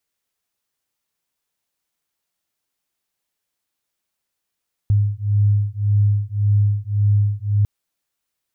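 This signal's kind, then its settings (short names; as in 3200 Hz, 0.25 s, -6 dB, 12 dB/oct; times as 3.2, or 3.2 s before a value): beating tones 102 Hz, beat 1.8 Hz, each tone -17.5 dBFS 2.75 s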